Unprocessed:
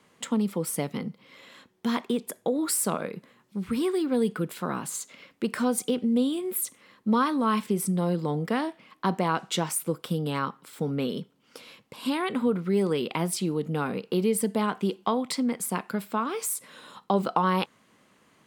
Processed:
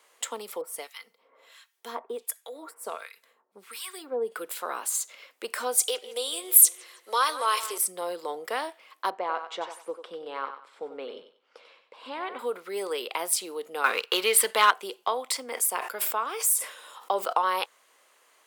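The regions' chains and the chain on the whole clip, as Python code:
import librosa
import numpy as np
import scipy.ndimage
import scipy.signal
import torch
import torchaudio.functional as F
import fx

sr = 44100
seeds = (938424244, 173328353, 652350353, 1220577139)

y = fx.chain(x, sr, fx.comb(ms=4.4, depth=0.34),
    fx.harmonic_tremolo(hz=1.4, depth_pct=100, crossover_hz=1200.0), at=(0.61, 4.32))
y = fx.chain(y, sr, fx.highpass(hz=360.0, slope=24),
    fx.peak_eq(hz=7100.0, db=9.5, octaves=2.6),
    fx.echo_wet_lowpass(ms=160, feedback_pct=45, hz=3200.0, wet_db=-14), at=(5.79, 7.78))
y = fx.chain(y, sr, fx.spacing_loss(db_at_10k=31),
    fx.echo_thinned(ms=94, feedback_pct=29, hz=400.0, wet_db=-8.5), at=(9.1, 12.39))
y = fx.chain(y, sr, fx.band_shelf(hz=2100.0, db=11.0, octaves=2.3),
    fx.leveller(passes=1), at=(13.84, 14.71))
y = fx.chain(y, sr, fx.notch(hz=4100.0, q=9.7),
    fx.sustainer(db_per_s=85.0), at=(15.32, 17.33))
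y = scipy.signal.sosfilt(scipy.signal.butter(4, 470.0, 'highpass', fs=sr, output='sos'), y)
y = fx.high_shelf(y, sr, hz=7200.0, db=10.0)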